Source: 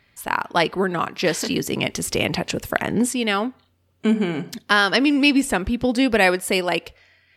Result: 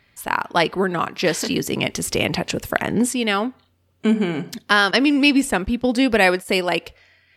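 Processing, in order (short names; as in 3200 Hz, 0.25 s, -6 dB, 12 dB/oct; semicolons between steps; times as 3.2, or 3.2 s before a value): 4.91–6.49 gate -25 dBFS, range -14 dB; gain +1 dB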